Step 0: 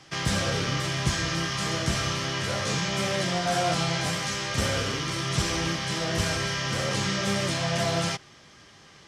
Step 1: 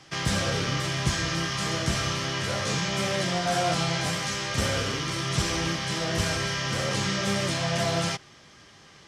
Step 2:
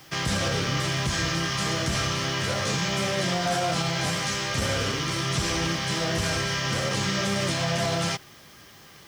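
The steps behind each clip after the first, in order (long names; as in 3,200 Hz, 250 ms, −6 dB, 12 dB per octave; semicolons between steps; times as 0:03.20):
no processing that can be heard
brickwall limiter −18 dBFS, peak gain reduction 6.5 dB; background noise blue −60 dBFS; level +2 dB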